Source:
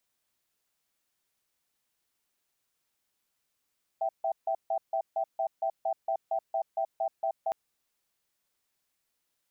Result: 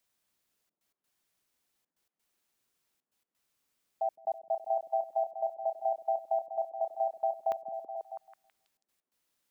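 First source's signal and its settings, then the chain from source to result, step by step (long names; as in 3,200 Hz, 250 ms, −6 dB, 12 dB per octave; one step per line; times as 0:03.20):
tone pair in a cadence 660 Hz, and 778 Hz, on 0.08 s, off 0.15 s, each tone −29 dBFS 3.51 s
gate pattern "xxxxxx.x.x" 130 BPM −60 dB
on a send: echo through a band-pass that steps 163 ms, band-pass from 210 Hz, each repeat 0.7 octaves, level 0 dB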